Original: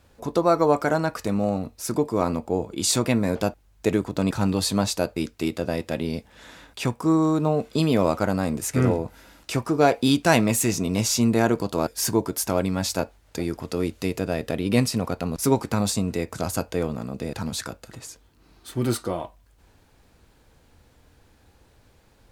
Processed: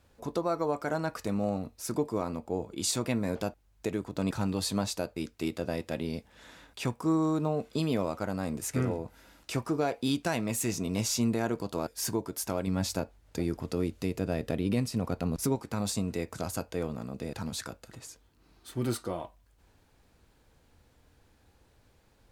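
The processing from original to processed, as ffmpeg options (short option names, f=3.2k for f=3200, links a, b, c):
-filter_complex "[0:a]asettb=1/sr,asplit=3[a][b][c];[a]atrim=end=12.674[d];[b]atrim=start=12.67:end=15.56,asetpts=PTS-STARTPTS,afade=t=in:d=0.004:c=qsin,afade=t=out:st=2.886:d=0.004:c=qsin,lowshelf=f=390:g=6[e];[c]atrim=start=15.556[f];[d][e]acrossfade=d=0.004:c1=hsin:c2=qsin[g];[g][f]acrossfade=d=0.004:c1=qsin:c2=hsin,alimiter=limit=-12dB:level=0:latency=1:release=438,volume=-6.5dB"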